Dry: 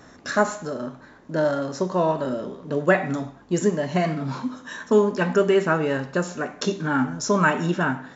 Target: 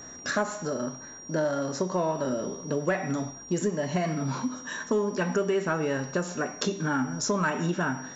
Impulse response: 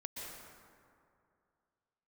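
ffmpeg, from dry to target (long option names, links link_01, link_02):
-af "aeval=exprs='val(0)+0.00708*sin(2*PI*5700*n/s)':channel_layout=same,asoftclip=type=tanh:threshold=-8dB,acompressor=threshold=-25dB:ratio=3"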